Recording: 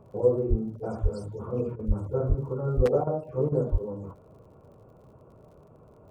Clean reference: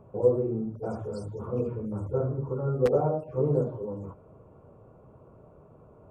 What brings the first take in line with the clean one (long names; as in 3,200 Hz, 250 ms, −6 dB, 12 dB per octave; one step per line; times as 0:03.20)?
click removal
high-pass at the plosives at 0:00.49/0:01.02/0:01.87/0:02.28/0:02.76/0:03.71
repair the gap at 0:01.76/0:03.04/0:03.49, 29 ms